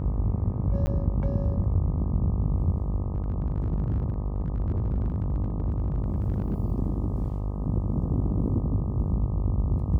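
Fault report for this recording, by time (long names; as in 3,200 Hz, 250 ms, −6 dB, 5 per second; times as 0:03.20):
mains buzz 50 Hz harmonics 25 −30 dBFS
0:00.86–0:00.87: drop-out 10 ms
0:03.15–0:06.55: clipping −22 dBFS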